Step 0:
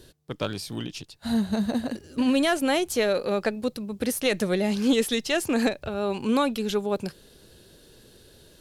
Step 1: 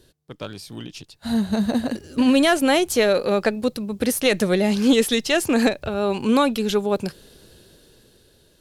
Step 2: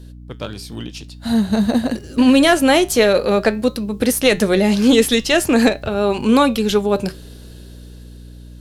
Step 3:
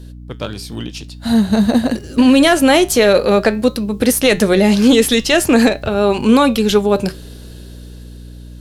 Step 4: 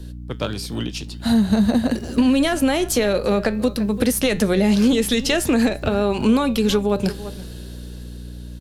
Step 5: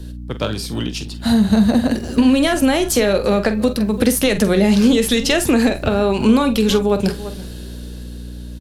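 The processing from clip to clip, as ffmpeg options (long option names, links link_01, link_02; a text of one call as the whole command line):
ffmpeg -i in.wav -af "dynaudnorm=framelen=280:gausssize=9:maxgain=12dB,volume=-4.5dB" out.wav
ffmpeg -i in.wav -af "flanger=delay=7.8:depth=1.4:regen=-80:speed=0.49:shape=sinusoidal,aeval=exprs='val(0)+0.00562*(sin(2*PI*60*n/s)+sin(2*PI*2*60*n/s)/2+sin(2*PI*3*60*n/s)/3+sin(2*PI*4*60*n/s)/4+sin(2*PI*5*60*n/s)/5)':channel_layout=same,volume=9dB" out.wav
ffmpeg -i in.wav -af "alimiter=level_in=4.5dB:limit=-1dB:release=50:level=0:latency=1,volume=-1dB" out.wav
ffmpeg -i in.wav -filter_complex "[0:a]asplit=2[link_01][link_02];[link_02]adelay=338.2,volume=-20dB,highshelf=frequency=4000:gain=-7.61[link_03];[link_01][link_03]amix=inputs=2:normalize=0,acrossover=split=170[link_04][link_05];[link_05]acompressor=threshold=-17dB:ratio=6[link_06];[link_04][link_06]amix=inputs=2:normalize=0" out.wav
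ffmpeg -i in.wav -filter_complex "[0:a]asplit=2[link_01][link_02];[link_02]adelay=46,volume=-11.5dB[link_03];[link_01][link_03]amix=inputs=2:normalize=0,volume=3dB" out.wav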